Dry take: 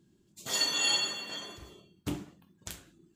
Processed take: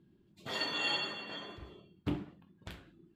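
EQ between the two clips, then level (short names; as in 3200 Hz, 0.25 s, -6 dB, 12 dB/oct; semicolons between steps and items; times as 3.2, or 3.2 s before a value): air absorption 440 m; high shelf 4000 Hz +10 dB; +1.0 dB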